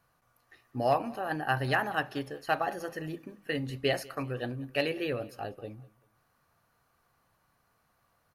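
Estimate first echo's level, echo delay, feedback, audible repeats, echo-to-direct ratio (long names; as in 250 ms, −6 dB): −22.5 dB, 195 ms, 35%, 2, −22.0 dB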